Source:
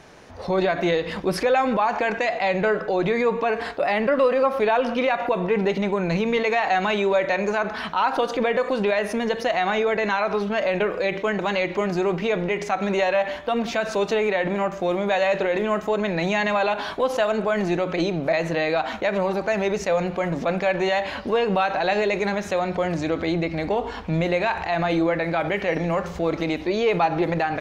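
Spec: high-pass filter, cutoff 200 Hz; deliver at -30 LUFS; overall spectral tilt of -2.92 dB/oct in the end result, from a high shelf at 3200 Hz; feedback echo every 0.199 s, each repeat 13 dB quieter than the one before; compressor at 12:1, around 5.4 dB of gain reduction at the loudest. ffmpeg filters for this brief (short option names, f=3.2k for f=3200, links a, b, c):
-af "highpass=200,highshelf=f=3.2k:g=5,acompressor=threshold=-21dB:ratio=12,aecho=1:1:199|398|597:0.224|0.0493|0.0108,volume=-4dB"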